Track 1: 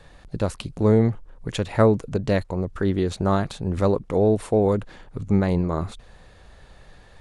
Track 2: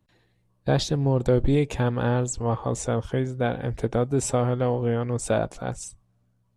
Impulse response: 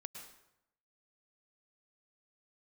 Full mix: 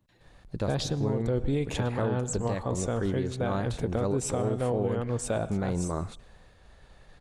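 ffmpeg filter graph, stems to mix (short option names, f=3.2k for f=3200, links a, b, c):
-filter_complex "[0:a]agate=range=-33dB:threshold=-46dB:ratio=3:detection=peak,adelay=200,volume=-6dB,asplit=2[a][b];[b]volume=-17.5dB[c];[1:a]volume=-3.5dB,asplit=2[d][e];[e]volume=-6dB[f];[2:a]atrim=start_sample=2205[g];[c][f]amix=inputs=2:normalize=0[h];[h][g]afir=irnorm=-1:irlink=0[i];[a][d][i]amix=inputs=3:normalize=0,alimiter=limit=-19dB:level=0:latency=1:release=214"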